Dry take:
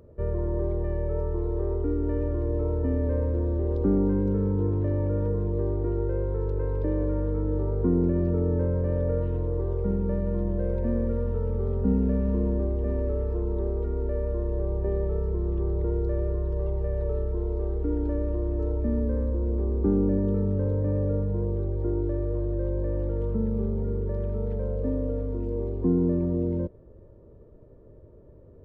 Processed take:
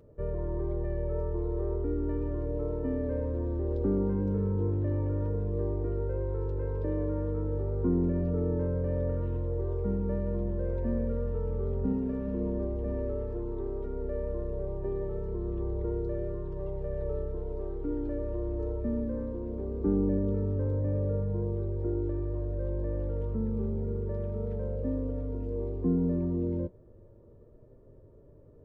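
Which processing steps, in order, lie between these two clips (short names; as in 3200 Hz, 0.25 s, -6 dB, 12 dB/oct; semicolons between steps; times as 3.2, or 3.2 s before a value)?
flange 0.35 Hz, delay 6.7 ms, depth 2.1 ms, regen -50%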